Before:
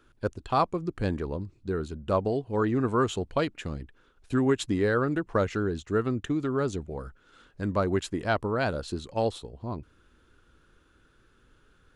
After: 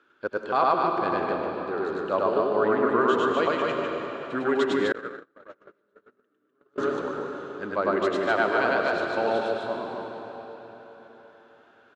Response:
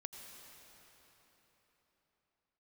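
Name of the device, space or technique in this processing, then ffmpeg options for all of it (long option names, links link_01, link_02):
station announcement: -filter_complex "[0:a]highpass=350,lowpass=3600,equalizer=frequency=1500:width_type=o:width=0.35:gain=4,aecho=1:1:102|250.7:1|0.708[link_01];[1:a]atrim=start_sample=2205[link_02];[link_01][link_02]afir=irnorm=-1:irlink=0,asettb=1/sr,asplit=3[link_03][link_04][link_05];[link_03]atrim=end=4.924[link_06];[link_04]atrim=start=4.92:end=6.78,asetpts=PTS-STARTPTS,afade=type=in:duration=0.004:curve=qsin,afade=type=out:start_time=1.856:duration=0.004:curve=qsin,agate=range=-46dB:threshold=-23dB:ratio=16:detection=peak[link_07];[link_05]atrim=start=6.776[link_08];[link_06][link_07]acrossfade=duration=0.004:curve1=hsin:curve2=qsin[link_09];[link_09][link_08]acrossfade=duration=0.004:curve1=qsin:curve2=hsin,volume=5.5dB"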